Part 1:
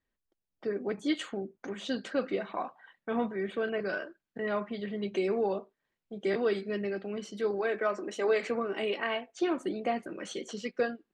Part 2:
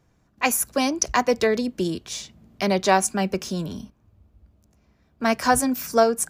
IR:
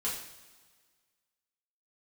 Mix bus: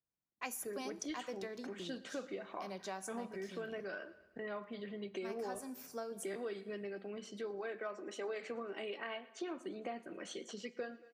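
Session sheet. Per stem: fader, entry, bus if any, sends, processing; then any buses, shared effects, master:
−5.5 dB, 0.00 s, send −22 dB, echo send −21.5 dB, no processing
−12.5 dB, 0.00 s, send −22.5 dB, no echo send, automatic ducking −9 dB, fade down 1.95 s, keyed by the first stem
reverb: on, pre-delay 3 ms
echo: repeating echo 113 ms, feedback 50%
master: noise gate with hold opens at −57 dBFS; low-shelf EQ 100 Hz −10.5 dB; downward compressor 2.5 to 1, threshold −42 dBFS, peak gain reduction 9 dB

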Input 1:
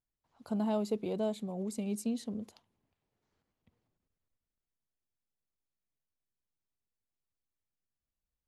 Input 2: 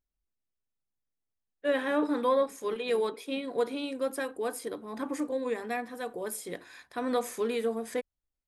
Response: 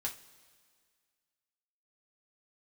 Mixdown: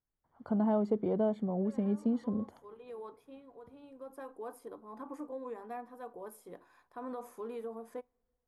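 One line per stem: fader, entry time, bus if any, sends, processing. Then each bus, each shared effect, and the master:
+2.0 dB, 0.00 s, no send, automatic gain control gain up to 5 dB; Savitzky-Golay smoothing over 41 samples
−11.5 dB, 0.00 s, send −20.5 dB, octave-band graphic EQ 1,000/2,000/4,000/8,000 Hz +9/−9/−9/−10 dB; brickwall limiter −22 dBFS, peak gain reduction 9.5 dB; automatic ducking −12 dB, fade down 0.60 s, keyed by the first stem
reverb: on, pre-delay 3 ms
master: downward compressor 1.5 to 1, threshold −33 dBFS, peak gain reduction 5 dB

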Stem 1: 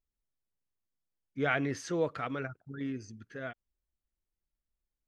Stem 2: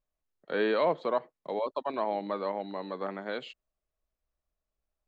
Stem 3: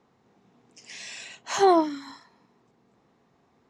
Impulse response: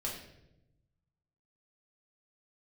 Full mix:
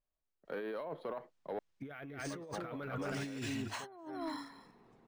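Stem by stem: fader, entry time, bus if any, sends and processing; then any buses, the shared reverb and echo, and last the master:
−0.5 dB, 0.45 s, no send, echo send −8 dB, no processing
−11.0 dB, 0.00 s, muted 0:01.59–0:02.30, no send, no echo send, high-shelf EQ 4,200 Hz −11 dB
−6.5 dB, 2.25 s, no send, echo send −15.5 dB, gate on every frequency bin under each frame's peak −30 dB strong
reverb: not used
echo: single-tap delay 227 ms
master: compressor whose output falls as the input rises −42 dBFS, ratio −1; soft clipping −31 dBFS, distortion −17 dB; linearly interpolated sample-rate reduction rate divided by 3×

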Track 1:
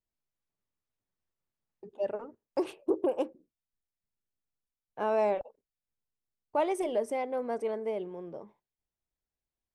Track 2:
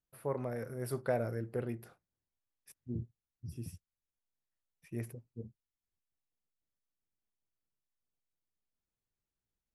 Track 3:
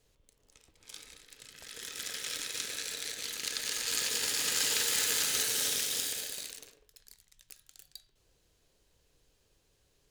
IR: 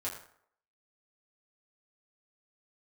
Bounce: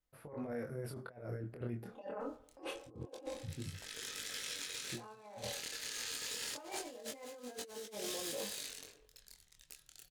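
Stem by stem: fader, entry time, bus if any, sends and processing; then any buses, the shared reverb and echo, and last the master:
−3.5 dB, 0.00 s, bus A, send −8.5 dB, parametric band 1,400 Hz +3.5 dB 1.3 octaves; comb filter 3.9 ms, depth 72%
−1.5 dB, 0.00 s, no bus, send −21 dB, high-shelf EQ 7,300 Hz −9.5 dB
−1.0 dB, 2.20 s, bus A, no send, downward compressor 2.5 to 1, threshold −38 dBFS, peak gain reduction 8.5 dB; pitch vibrato 1.5 Hz 25 cents
bus A: 0.0 dB, high-shelf EQ 9,100 Hz −4 dB; brickwall limiter −29.5 dBFS, peak gain reduction 11.5 dB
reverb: on, RT60 0.65 s, pre-delay 5 ms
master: compressor whose output falls as the input rises −40 dBFS, ratio −0.5; chorus effect 0.25 Hz, delay 19.5 ms, depth 6.3 ms

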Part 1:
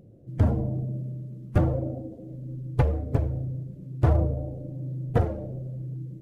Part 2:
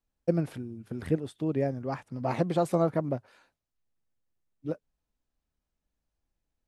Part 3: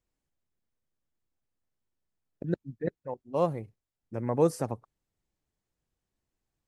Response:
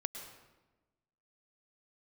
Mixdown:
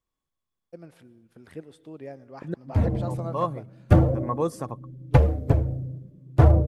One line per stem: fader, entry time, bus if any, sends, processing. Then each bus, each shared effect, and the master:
−5.5 dB, 2.35 s, no send, automatic gain control gain up to 11.5 dB; multiband upward and downward expander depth 70%
−16.0 dB, 0.45 s, send −11.5 dB, low-shelf EQ 330 Hz −10 dB; automatic gain control gain up to 7 dB
−2.5 dB, 0.00 s, no send, hollow resonant body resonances 1,100/3,400 Hz, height 16 dB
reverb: on, RT60 1.1 s, pre-delay 99 ms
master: no processing

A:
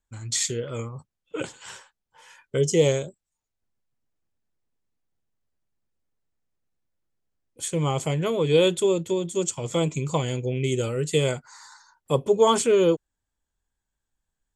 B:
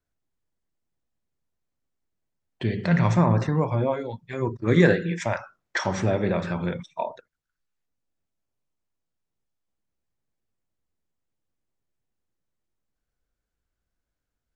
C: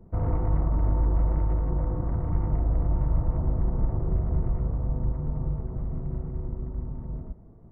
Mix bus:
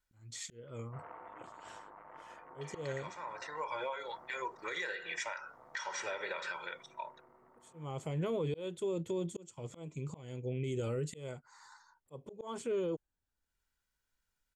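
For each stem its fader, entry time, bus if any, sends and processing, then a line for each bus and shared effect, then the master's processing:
−5.5 dB, 0.00 s, no bus, no send, high-shelf EQ 2,700 Hz −9 dB; volume swells 591 ms
+2.0 dB, 0.00 s, bus A, no send, comb filter 2.1 ms, depth 63%; automatic ducking −19 dB, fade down 1.20 s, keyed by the first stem
−0.5 dB, 0.80 s, bus A, no send, soft clipping −22 dBFS, distortion −13 dB
bus A: 0.0 dB, high-pass filter 1,200 Hz 12 dB per octave; downward compressor 10 to 1, threshold −34 dBFS, peak gain reduction 15 dB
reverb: not used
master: brickwall limiter −28 dBFS, peak gain reduction 10 dB

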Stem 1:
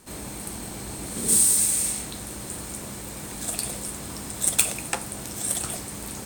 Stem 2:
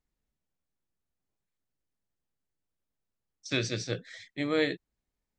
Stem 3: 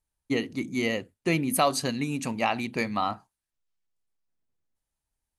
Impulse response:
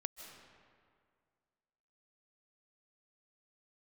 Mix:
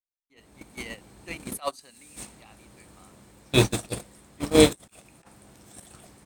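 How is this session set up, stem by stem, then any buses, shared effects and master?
+2.5 dB, 0.30 s, bus A, send −19 dB, high-shelf EQ 5,300 Hz −10 dB; compressor whose output falls as the input rises −33 dBFS, ratio −0.5
+0.5 dB, 0.00 s, no bus, no send, low-shelf EQ 100 Hz +4 dB; flanger swept by the level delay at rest 6 ms, full sweep at −30.5 dBFS
0.0 dB, 0.00 s, bus A, no send, high-pass filter 880 Hz 6 dB per octave; automatic gain control gain up to 4 dB; automatic ducking −16 dB, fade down 1.80 s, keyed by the second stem
bus A: 0.0 dB, brickwall limiter −19.5 dBFS, peak gain reduction 11 dB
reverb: on, RT60 2.1 s, pre-delay 115 ms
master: noise gate −25 dBFS, range −34 dB; automatic gain control gain up to 14.5 dB

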